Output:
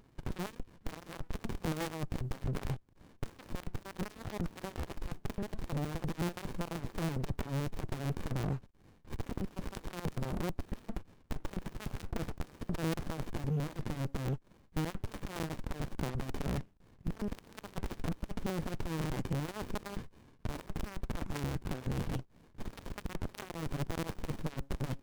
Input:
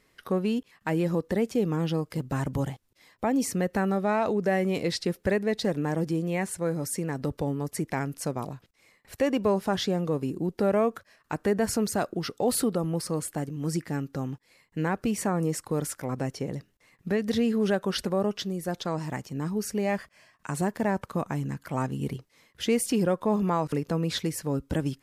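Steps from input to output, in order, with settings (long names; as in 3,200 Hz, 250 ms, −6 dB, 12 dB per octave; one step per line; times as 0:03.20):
wrap-around overflow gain 29 dB
downward compressor, threshold −33 dBFS, peak gain reduction 2.5 dB
windowed peak hold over 65 samples
level +5 dB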